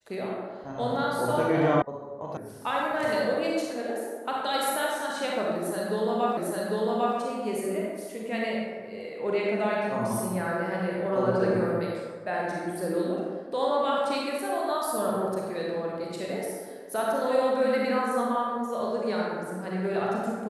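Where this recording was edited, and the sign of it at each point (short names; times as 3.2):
1.82 sound cut off
2.37 sound cut off
6.37 repeat of the last 0.8 s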